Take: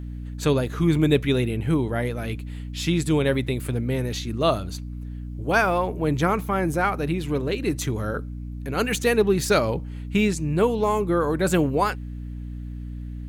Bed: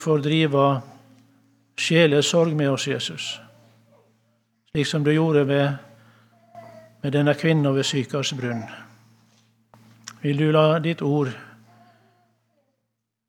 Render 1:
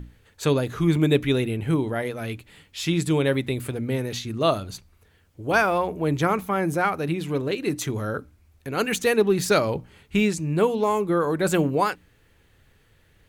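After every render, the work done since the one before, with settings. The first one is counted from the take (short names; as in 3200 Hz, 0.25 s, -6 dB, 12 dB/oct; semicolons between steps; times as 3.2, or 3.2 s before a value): notches 60/120/180/240/300 Hz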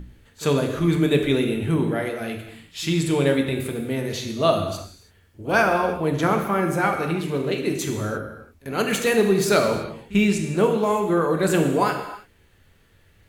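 pre-echo 44 ms -20 dB; non-linear reverb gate 0.36 s falling, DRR 3 dB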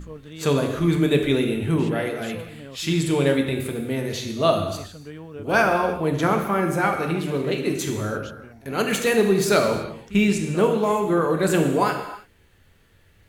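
add bed -19.5 dB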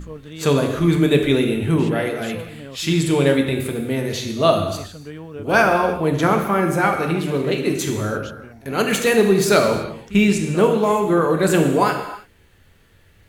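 gain +3.5 dB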